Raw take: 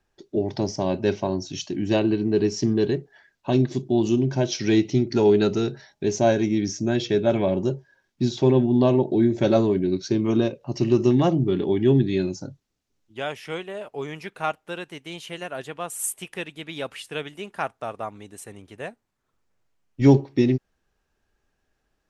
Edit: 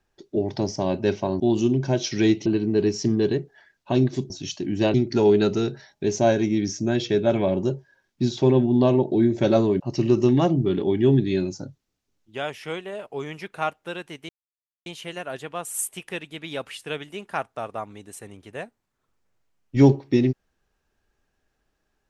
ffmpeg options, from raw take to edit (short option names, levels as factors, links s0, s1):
-filter_complex "[0:a]asplit=7[s0][s1][s2][s3][s4][s5][s6];[s0]atrim=end=1.402[s7];[s1]atrim=start=3.878:end=4.942[s8];[s2]atrim=start=2.038:end=3.882[s9];[s3]atrim=start=1.398:end=2.042[s10];[s4]atrim=start=4.938:end=9.802[s11];[s5]atrim=start=10.618:end=15.11,asetpts=PTS-STARTPTS,afade=t=out:st=4.488:d=0.004:c=hsin,apad=pad_dur=0.57[s12];[s6]atrim=start=15.11,asetpts=PTS-STARTPTS,afade=t=in:d=0.004:c=hsin[s13];[s7][s8]acrossfade=d=0.004:c1=hsin:c2=hsin[s14];[s14][s9]acrossfade=d=0.004:c1=hsin:c2=hsin[s15];[s15][s10]acrossfade=d=0.004:c1=hsin:c2=hsin[s16];[s16][s11]acrossfade=d=0.004:c1=hsin:c2=hsin[s17];[s12][s13]concat=n=2:v=0:a=1[s18];[s17][s18]acrossfade=d=0.004:c1=hsin:c2=hsin"